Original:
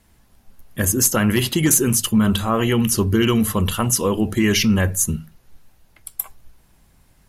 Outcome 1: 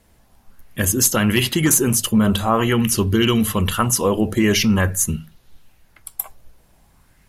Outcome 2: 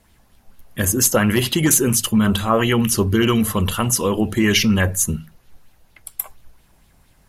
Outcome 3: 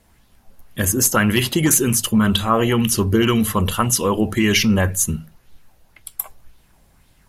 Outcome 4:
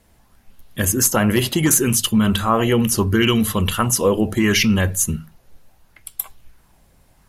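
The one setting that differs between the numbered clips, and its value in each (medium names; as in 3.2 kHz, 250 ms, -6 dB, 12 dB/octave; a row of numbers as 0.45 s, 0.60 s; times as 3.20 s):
sweeping bell, rate: 0.46 Hz, 4.3 Hz, 1.9 Hz, 0.72 Hz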